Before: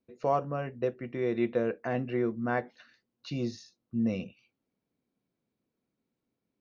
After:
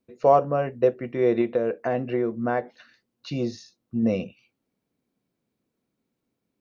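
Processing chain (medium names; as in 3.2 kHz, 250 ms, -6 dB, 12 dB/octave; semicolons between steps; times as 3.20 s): dynamic bell 570 Hz, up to +7 dB, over -42 dBFS, Q 0.93; 1.41–4.03 s: compression 2.5:1, threshold -27 dBFS, peak gain reduction 7 dB; trim +4.5 dB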